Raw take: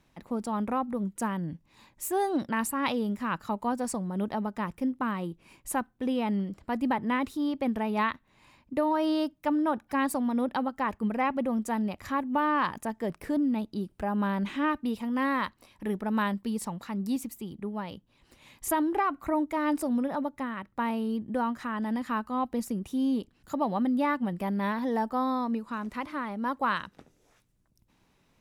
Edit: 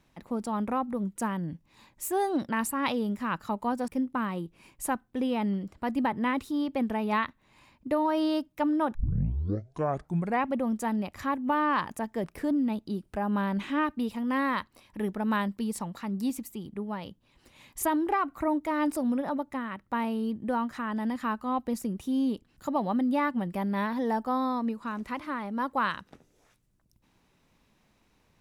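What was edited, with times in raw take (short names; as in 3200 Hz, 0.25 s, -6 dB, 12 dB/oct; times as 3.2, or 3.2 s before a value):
3.88–4.74 cut
9.81 tape start 1.51 s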